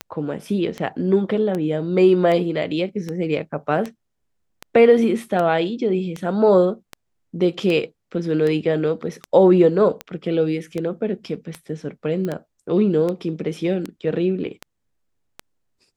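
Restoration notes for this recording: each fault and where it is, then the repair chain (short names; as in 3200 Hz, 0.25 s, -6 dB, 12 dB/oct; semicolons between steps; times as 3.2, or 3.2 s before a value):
tick 78 rpm -14 dBFS
12.25 pop -16 dBFS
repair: de-click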